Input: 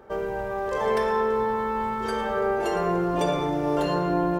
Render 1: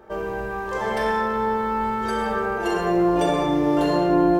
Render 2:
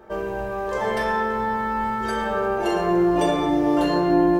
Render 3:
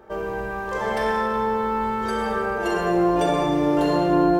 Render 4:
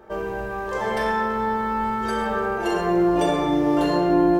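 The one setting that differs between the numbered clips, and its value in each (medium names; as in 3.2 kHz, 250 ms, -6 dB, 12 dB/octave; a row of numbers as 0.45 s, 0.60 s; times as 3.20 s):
gated-style reverb, gate: 260 ms, 90 ms, 450 ms, 170 ms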